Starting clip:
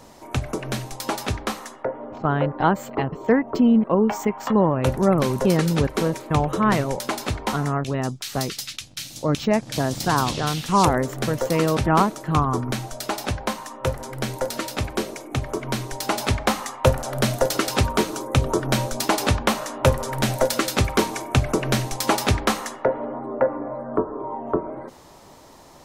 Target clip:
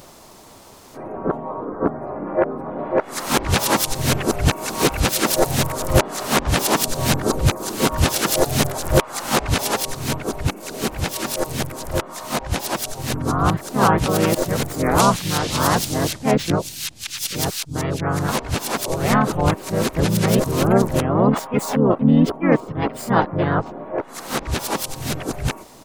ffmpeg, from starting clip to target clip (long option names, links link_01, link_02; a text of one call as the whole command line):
ffmpeg -i in.wav -filter_complex "[0:a]areverse,crystalizer=i=1:c=0,asplit=4[link_01][link_02][link_03][link_04];[link_02]asetrate=29433,aresample=44100,atempo=1.49831,volume=-3dB[link_05];[link_03]asetrate=37084,aresample=44100,atempo=1.18921,volume=-18dB[link_06];[link_04]asetrate=52444,aresample=44100,atempo=0.840896,volume=-3dB[link_07];[link_01][link_05][link_06][link_07]amix=inputs=4:normalize=0,volume=-1dB" out.wav